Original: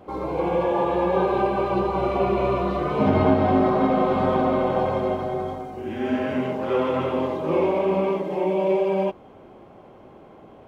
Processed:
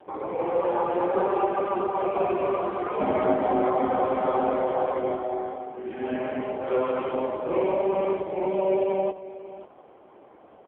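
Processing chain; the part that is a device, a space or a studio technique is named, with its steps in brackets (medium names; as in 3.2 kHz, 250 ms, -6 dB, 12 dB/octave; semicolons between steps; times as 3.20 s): satellite phone (band-pass 340–3100 Hz; delay 541 ms -16 dB; AMR-NB 5.9 kbps 8 kHz)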